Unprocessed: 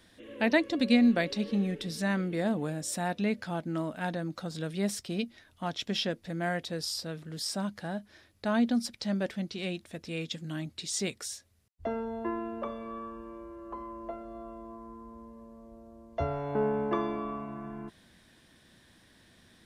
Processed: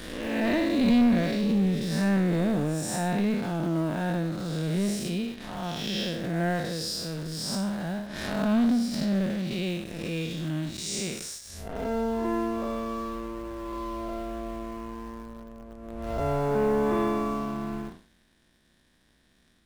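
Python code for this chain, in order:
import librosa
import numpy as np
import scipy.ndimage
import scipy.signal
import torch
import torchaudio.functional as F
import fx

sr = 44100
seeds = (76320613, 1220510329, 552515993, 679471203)

p1 = fx.spec_blur(x, sr, span_ms=209.0)
p2 = fx.peak_eq(p1, sr, hz=100.0, db=-14.0, octaves=0.59)
p3 = fx.leveller(p2, sr, passes=2)
p4 = fx.quant_dither(p3, sr, seeds[0], bits=6, dither='none')
p5 = p3 + F.gain(torch.from_numpy(p4), -12.0).numpy()
p6 = fx.low_shelf(p5, sr, hz=130.0, db=11.0)
p7 = fx.pre_swell(p6, sr, db_per_s=38.0)
y = F.gain(torch.from_numpy(p7), -2.5).numpy()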